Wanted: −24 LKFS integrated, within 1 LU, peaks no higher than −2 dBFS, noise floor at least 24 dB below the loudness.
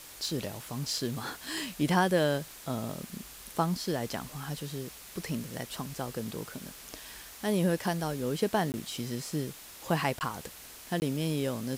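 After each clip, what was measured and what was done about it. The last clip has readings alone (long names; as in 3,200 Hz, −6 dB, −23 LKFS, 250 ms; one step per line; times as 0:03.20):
number of dropouts 3; longest dropout 19 ms; background noise floor −49 dBFS; target noise floor −57 dBFS; integrated loudness −33.0 LKFS; sample peak −13.5 dBFS; target loudness −24.0 LKFS
→ repair the gap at 0:08.72/0:10.19/0:11.00, 19 ms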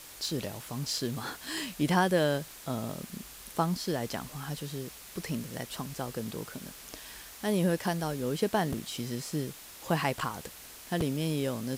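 number of dropouts 0; background noise floor −49 dBFS; target noise floor −57 dBFS
→ broadband denoise 8 dB, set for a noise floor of −49 dBFS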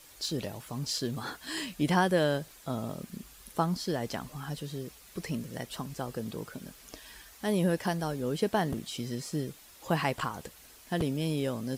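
background noise floor −54 dBFS; target noise floor −57 dBFS
→ broadband denoise 6 dB, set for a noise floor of −54 dBFS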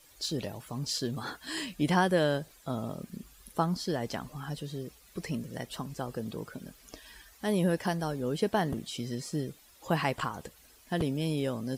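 background noise floor −59 dBFS; integrated loudness −33.0 LKFS; sample peak −13.5 dBFS; target loudness −24.0 LKFS
→ level +9 dB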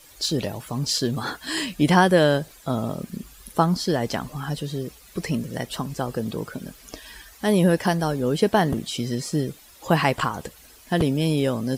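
integrated loudness −24.0 LKFS; sample peak −4.5 dBFS; background noise floor −50 dBFS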